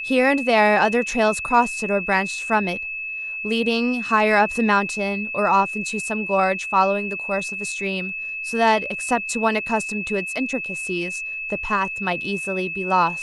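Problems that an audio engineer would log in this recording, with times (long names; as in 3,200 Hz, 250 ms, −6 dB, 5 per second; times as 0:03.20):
whistle 2,600 Hz −27 dBFS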